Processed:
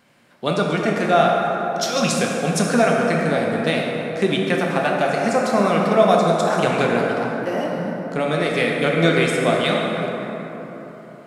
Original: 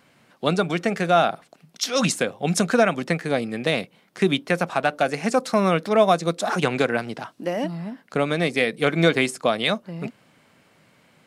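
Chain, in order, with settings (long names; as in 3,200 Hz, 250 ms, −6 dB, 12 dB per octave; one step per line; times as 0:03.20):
dense smooth reverb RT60 4 s, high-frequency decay 0.4×, DRR −2 dB
level −1 dB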